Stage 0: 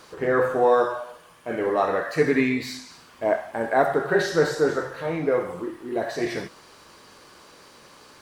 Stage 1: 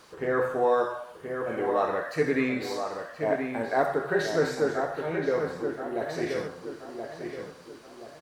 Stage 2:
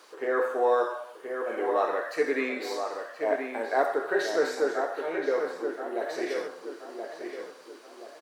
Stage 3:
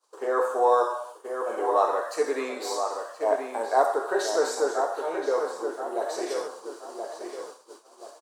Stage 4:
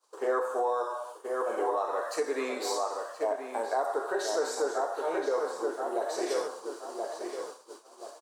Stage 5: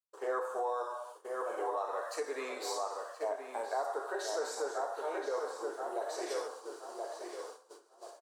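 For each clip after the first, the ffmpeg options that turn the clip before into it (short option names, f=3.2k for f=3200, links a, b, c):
-filter_complex "[0:a]asplit=2[a][b];[b]adelay=1026,lowpass=f=2.5k:p=1,volume=-6dB,asplit=2[c][d];[d]adelay=1026,lowpass=f=2.5k:p=1,volume=0.41,asplit=2[e][f];[f]adelay=1026,lowpass=f=2.5k:p=1,volume=0.41,asplit=2[g][h];[h]adelay=1026,lowpass=f=2.5k:p=1,volume=0.41,asplit=2[i][j];[j]adelay=1026,lowpass=f=2.5k:p=1,volume=0.41[k];[a][c][e][g][i][k]amix=inputs=6:normalize=0,volume=-5dB"
-af "highpass=f=310:w=0.5412,highpass=f=310:w=1.3066"
-af "equalizer=f=260:t=o:w=0.7:g=-4.5,agate=range=-33dB:threshold=-42dB:ratio=3:detection=peak,equalizer=f=125:t=o:w=1:g=-11,equalizer=f=1k:t=o:w=1:g=8,equalizer=f=2k:t=o:w=1:g=-11,equalizer=f=8k:t=o:w=1:g=11,volume=1.5dB"
-af "alimiter=limit=-20dB:level=0:latency=1:release=319"
-af "agate=range=-33dB:threshold=-44dB:ratio=3:detection=peak,highpass=390,aecho=1:1:1088:0.133,volume=-5dB"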